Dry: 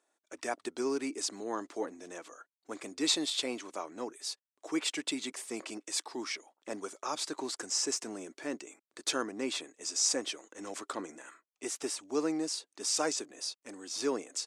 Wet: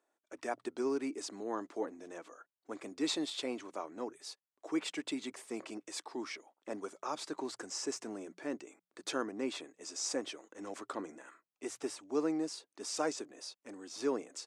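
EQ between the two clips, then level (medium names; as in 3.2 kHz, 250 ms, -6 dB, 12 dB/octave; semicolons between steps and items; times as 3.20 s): treble shelf 2.5 kHz -9.5 dB; hum notches 60/120/180 Hz; -1.0 dB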